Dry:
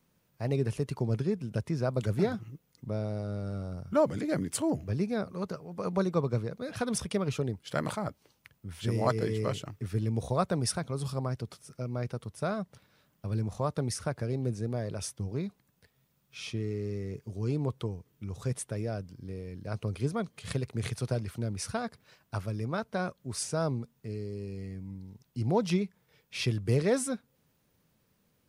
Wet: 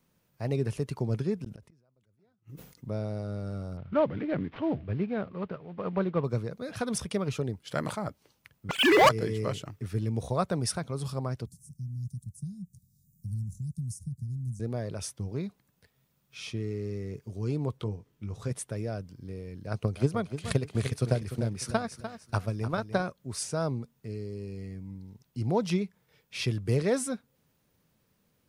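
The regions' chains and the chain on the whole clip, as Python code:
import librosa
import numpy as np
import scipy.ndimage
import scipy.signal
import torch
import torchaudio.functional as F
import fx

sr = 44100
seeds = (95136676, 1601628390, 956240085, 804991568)

y = fx.chain(x, sr, fx.gate_flip(shuts_db=-27.0, range_db=-42),
    fx.sustainer(db_per_s=87.0), at=(1.4, 2.89))
y = fx.chain(y, sr, fx.cvsd(bps=32000),
    fx.lowpass(hz=3000.0, slope=24), at=(3.77, 6.24))
y = fx.chain(y, sr, fx.sine_speech(),
    fx.tilt_shelf(db=-9.5, hz=760.0),
    fx.leveller(passes=5), at=(8.69, 9.09))
y = fx.chain(y, sr, fx.ellip_bandstop(low_hz=170.0, high_hz=7100.0, order=3, stop_db=50),
    fx.band_squash(depth_pct=40), at=(11.46, 14.6))
y = fx.chain(y, sr, fx.high_shelf(hz=8400.0, db=-8.0),
    fx.doubler(ms=19.0, db=-8.5), at=(17.77, 18.51))
y = fx.chain(y, sr, fx.transient(attack_db=7, sustain_db=-1),
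    fx.echo_feedback(ms=298, feedback_pct=31, wet_db=-10.5), at=(19.67, 23.03))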